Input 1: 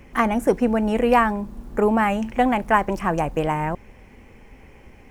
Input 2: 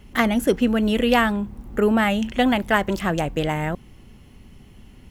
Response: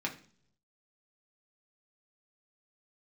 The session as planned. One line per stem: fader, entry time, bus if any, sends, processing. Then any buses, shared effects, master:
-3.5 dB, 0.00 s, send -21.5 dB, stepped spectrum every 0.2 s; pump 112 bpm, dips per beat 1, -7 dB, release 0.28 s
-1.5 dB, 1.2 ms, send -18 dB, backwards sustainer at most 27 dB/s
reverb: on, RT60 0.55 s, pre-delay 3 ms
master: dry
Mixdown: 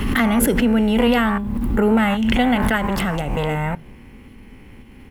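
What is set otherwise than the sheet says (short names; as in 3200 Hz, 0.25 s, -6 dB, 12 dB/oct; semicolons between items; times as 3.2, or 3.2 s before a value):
stem 1 -3.5 dB -> +3.0 dB; master: extra fifteen-band EQ 250 Hz +4 dB, 630 Hz -7 dB, 6300 Hz -7 dB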